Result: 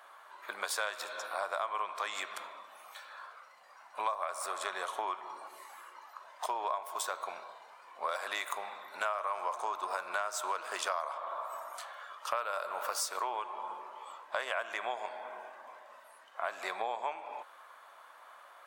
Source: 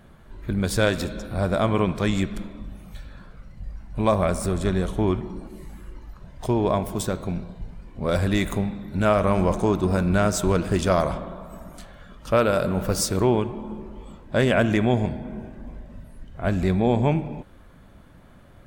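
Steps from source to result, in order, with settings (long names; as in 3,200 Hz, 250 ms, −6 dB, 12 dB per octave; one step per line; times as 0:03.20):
high-pass filter 660 Hz 24 dB per octave
parametric band 1,100 Hz +9 dB 0.72 octaves
downward compressor 6 to 1, threshold −32 dBFS, peak gain reduction 18 dB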